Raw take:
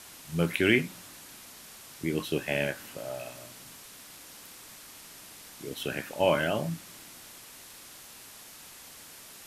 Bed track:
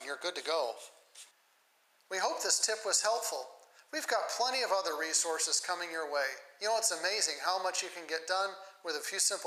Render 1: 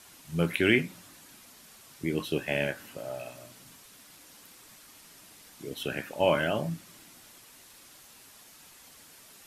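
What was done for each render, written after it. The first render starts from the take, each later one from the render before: noise reduction 6 dB, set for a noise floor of -49 dBFS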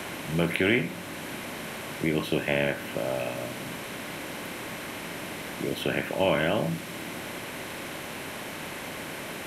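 spectral levelling over time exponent 0.6; three bands compressed up and down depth 40%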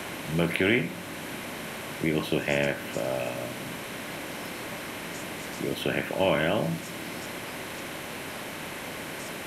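add bed track -18 dB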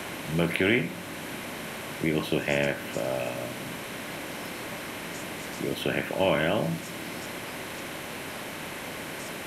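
no audible change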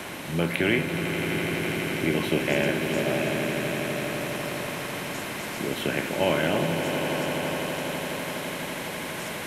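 echo with a slow build-up 83 ms, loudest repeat 8, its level -11 dB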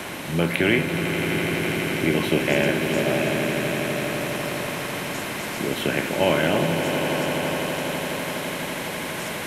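trim +3.5 dB

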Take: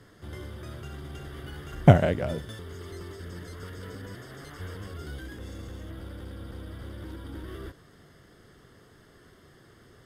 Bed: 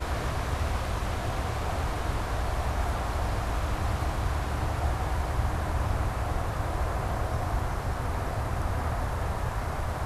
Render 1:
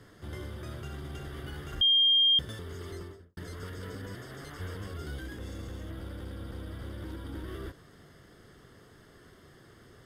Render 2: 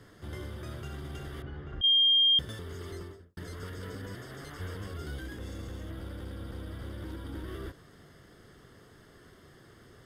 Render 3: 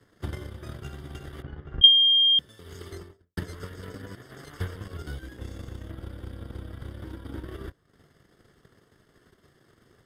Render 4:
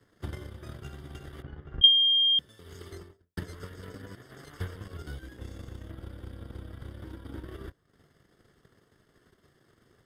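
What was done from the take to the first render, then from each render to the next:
1.81–2.39 s: bleep 3.21 kHz -19.5 dBFS; 2.91–3.37 s: studio fade out
1.42–1.84 s: tape spacing loss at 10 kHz 35 dB
transient shaper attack +11 dB, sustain -12 dB; three bands expanded up and down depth 40%
trim -3.5 dB

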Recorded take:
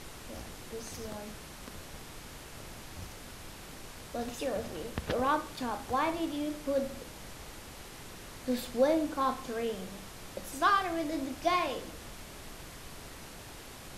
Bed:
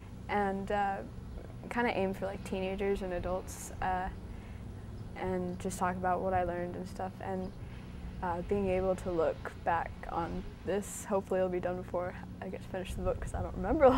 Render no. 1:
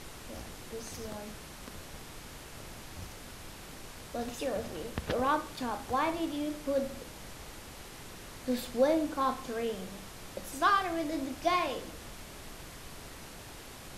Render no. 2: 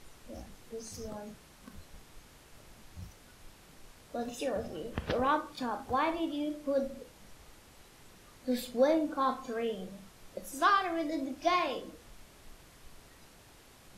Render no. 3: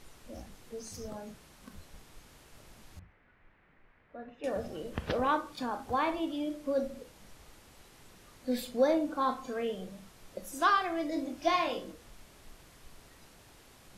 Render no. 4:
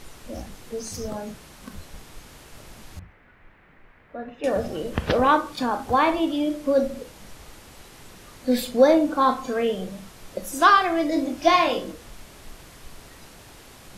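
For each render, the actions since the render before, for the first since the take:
no audible change
noise print and reduce 10 dB
2.99–4.44 s: four-pole ladder low-pass 2.3 kHz, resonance 50%; 11.14–11.92 s: doubling 21 ms -6 dB
trim +10.5 dB

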